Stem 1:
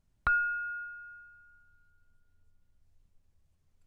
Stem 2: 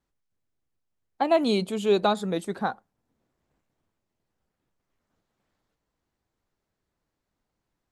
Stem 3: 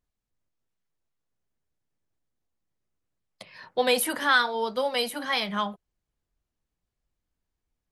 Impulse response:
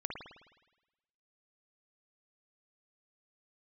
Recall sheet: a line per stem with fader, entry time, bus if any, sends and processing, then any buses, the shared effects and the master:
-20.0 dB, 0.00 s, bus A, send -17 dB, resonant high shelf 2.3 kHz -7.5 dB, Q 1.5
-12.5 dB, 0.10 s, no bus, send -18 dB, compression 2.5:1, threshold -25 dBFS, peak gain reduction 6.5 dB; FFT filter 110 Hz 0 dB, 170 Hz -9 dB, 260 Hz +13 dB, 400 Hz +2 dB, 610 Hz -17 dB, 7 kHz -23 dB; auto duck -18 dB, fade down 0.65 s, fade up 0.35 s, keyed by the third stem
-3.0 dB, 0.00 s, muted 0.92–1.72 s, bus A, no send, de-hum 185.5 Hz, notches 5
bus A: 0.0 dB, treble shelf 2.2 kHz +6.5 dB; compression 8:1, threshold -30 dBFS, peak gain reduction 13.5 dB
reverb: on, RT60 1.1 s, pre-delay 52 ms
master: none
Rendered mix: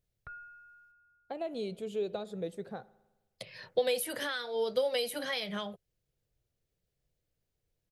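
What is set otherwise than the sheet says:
stem 2: missing FFT filter 110 Hz 0 dB, 170 Hz -9 dB, 260 Hz +13 dB, 400 Hz +2 dB, 610 Hz -17 dB, 7 kHz -23 dB; stem 3: missing de-hum 185.5 Hz, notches 5; master: extra graphic EQ 125/250/500/1000/8000 Hz +10/-6/+10/-10/-3 dB

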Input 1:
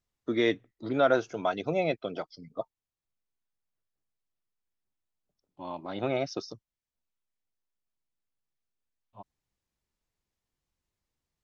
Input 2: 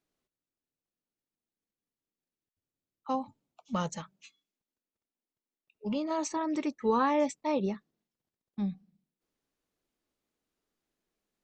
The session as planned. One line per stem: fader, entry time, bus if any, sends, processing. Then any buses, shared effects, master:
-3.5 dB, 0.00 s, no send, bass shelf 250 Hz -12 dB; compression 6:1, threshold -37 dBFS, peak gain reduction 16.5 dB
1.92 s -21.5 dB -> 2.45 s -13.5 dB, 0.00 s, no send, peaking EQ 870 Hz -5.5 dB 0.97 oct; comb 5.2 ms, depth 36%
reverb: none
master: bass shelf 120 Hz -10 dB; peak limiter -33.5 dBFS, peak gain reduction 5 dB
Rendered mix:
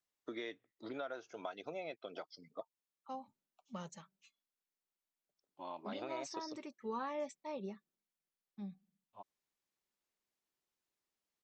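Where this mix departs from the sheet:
stem 2: missing peaking EQ 870 Hz -5.5 dB 0.97 oct; master: missing peak limiter -33.5 dBFS, peak gain reduction 5 dB

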